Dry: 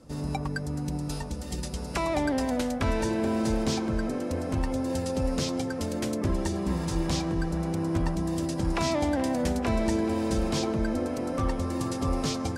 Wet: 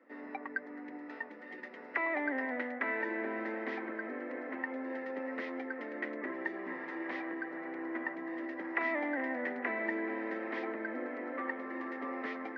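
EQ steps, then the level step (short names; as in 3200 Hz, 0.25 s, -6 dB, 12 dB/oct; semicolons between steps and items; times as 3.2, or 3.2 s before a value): steep high-pass 250 Hz 48 dB/oct; ladder low-pass 2000 Hz, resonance 85%; +3.5 dB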